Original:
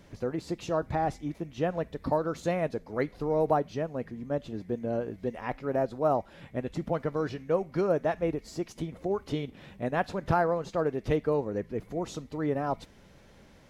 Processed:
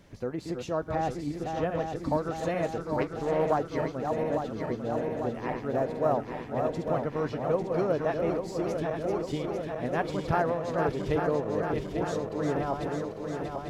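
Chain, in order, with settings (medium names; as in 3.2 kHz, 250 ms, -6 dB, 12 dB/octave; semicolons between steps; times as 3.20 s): backward echo that repeats 424 ms, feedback 81%, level -5 dB; 2.98–3.59 s: loudspeaker Doppler distortion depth 0.25 ms; trim -1.5 dB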